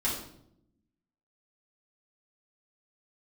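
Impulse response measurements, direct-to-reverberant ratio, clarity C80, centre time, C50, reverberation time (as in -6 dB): -7.5 dB, 7.5 dB, 41 ms, 4.0 dB, 0.75 s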